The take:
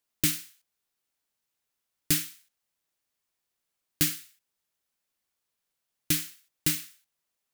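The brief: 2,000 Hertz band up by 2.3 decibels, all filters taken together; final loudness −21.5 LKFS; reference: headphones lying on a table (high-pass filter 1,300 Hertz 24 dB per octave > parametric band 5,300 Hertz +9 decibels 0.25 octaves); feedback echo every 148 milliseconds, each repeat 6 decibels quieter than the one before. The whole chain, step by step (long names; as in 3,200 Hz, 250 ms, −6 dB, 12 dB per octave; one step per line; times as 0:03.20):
high-pass filter 1,300 Hz 24 dB per octave
parametric band 2,000 Hz +3 dB
parametric band 5,300 Hz +9 dB 0.25 octaves
repeating echo 148 ms, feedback 50%, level −6 dB
level +6 dB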